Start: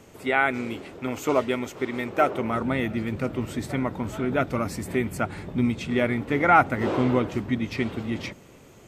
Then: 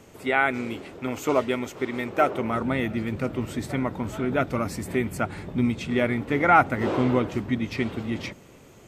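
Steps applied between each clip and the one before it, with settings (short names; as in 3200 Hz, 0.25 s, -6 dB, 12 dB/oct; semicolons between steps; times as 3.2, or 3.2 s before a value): nothing audible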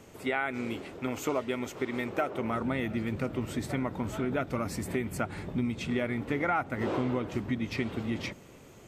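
compressor 4:1, threshold -25 dBFS, peak gain reduction 11.5 dB; gain -2 dB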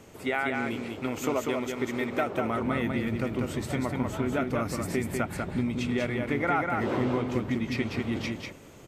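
echo 0.194 s -4 dB; gain +1.5 dB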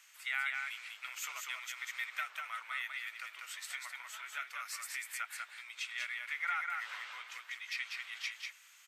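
HPF 1500 Hz 24 dB/oct; gain -2 dB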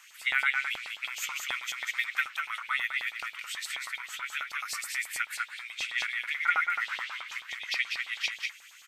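LFO high-pass saw up 9.3 Hz 750–4100 Hz; gain +5 dB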